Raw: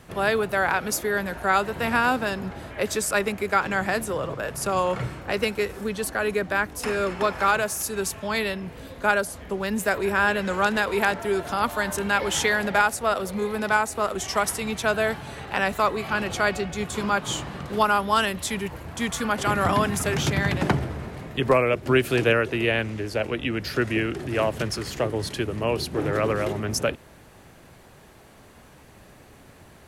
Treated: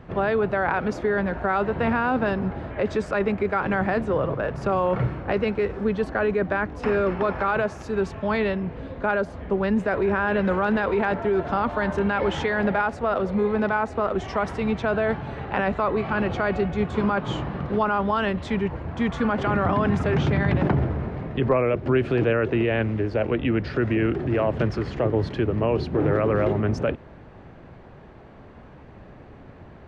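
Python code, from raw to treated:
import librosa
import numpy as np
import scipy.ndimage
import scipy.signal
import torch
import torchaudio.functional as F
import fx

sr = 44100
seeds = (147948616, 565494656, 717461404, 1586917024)

p1 = fx.over_compress(x, sr, threshold_db=-25.0, ratio=-0.5)
p2 = x + (p1 * librosa.db_to_amplitude(-1.0))
y = fx.spacing_loss(p2, sr, db_at_10k=40)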